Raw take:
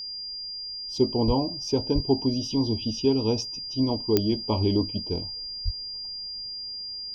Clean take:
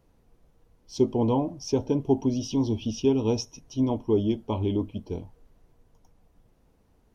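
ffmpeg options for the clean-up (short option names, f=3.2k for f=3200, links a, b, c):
-filter_complex "[0:a]adeclick=t=4,bandreject=f=4.8k:w=30,asplit=3[a][b][c];[a]afade=t=out:st=1.26:d=0.02[d];[b]highpass=f=140:w=0.5412,highpass=f=140:w=1.3066,afade=t=in:st=1.26:d=0.02,afade=t=out:st=1.38:d=0.02[e];[c]afade=t=in:st=1.38:d=0.02[f];[d][e][f]amix=inputs=3:normalize=0,asplit=3[g][h][i];[g]afade=t=out:st=1.94:d=0.02[j];[h]highpass=f=140:w=0.5412,highpass=f=140:w=1.3066,afade=t=in:st=1.94:d=0.02,afade=t=out:st=2.06:d=0.02[k];[i]afade=t=in:st=2.06:d=0.02[l];[j][k][l]amix=inputs=3:normalize=0,asplit=3[m][n][o];[m]afade=t=out:st=5.64:d=0.02[p];[n]highpass=f=140:w=0.5412,highpass=f=140:w=1.3066,afade=t=in:st=5.64:d=0.02,afade=t=out:st=5.76:d=0.02[q];[o]afade=t=in:st=5.76:d=0.02[r];[p][q][r]amix=inputs=3:normalize=0,asetnsamples=n=441:p=0,asendcmd='4.32 volume volume -3dB',volume=0dB"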